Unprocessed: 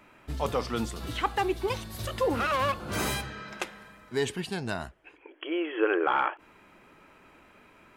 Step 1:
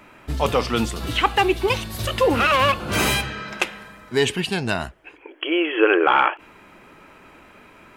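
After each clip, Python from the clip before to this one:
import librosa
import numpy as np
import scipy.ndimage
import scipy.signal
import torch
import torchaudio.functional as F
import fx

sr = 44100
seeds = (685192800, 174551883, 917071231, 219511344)

y = fx.dynamic_eq(x, sr, hz=2700.0, q=2.3, threshold_db=-50.0, ratio=4.0, max_db=7)
y = F.gain(torch.from_numpy(y), 8.5).numpy()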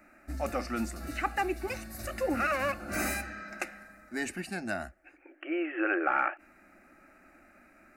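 y = fx.fixed_phaser(x, sr, hz=660.0, stages=8)
y = F.gain(torch.from_numpy(y), -8.0).numpy()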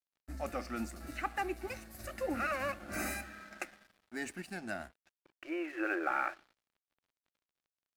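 y = fx.echo_feedback(x, sr, ms=115, feedback_pct=54, wet_db=-23)
y = np.sign(y) * np.maximum(np.abs(y) - 10.0 ** (-50.5 / 20.0), 0.0)
y = F.gain(torch.from_numpy(y), -5.0).numpy()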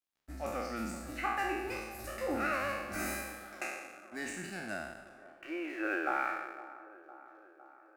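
y = fx.spec_trails(x, sr, decay_s=1.09)
y = fx.echo_wet_bandpass(y, sr, ms=508, feedback_pct=64, hz=640.0, wet_db=-14.5)
y = F.gain(torch.from_numpy(y), -2.0).numpy()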